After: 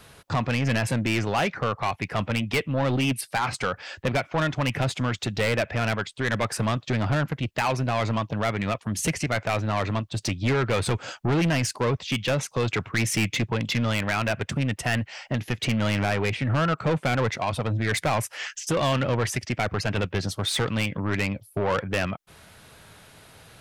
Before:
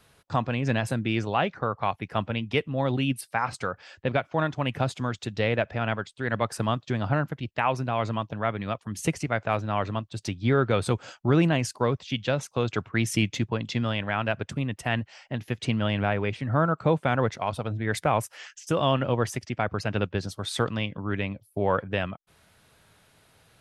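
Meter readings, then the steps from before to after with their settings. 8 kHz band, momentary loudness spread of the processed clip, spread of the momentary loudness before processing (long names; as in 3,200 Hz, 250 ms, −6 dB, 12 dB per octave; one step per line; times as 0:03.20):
+6.5 dB, 4 LU, 7 LU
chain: dynamic equaliser 2,200 Hz, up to +7 dB, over −45 dBFS, Q 1.9
in parallel at +1 dB: downward compressor, threshold −34 dBFS, peak gain reduction 16.5 dB
on the sum: soft clipping −22.5 dBFS, distortion −8 dB
level +3.5 dB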